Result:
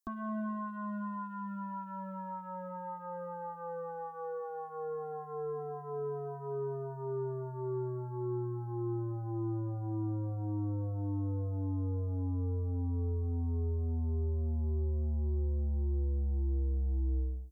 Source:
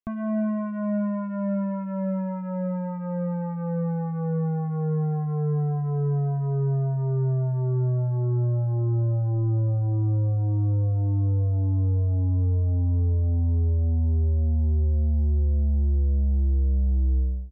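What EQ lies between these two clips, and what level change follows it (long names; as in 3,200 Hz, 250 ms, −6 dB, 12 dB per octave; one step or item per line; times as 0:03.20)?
bass and treble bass −8 dB, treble +11 dB
phaser with its sweep stopped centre 600 Hz, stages 6
0.0 dB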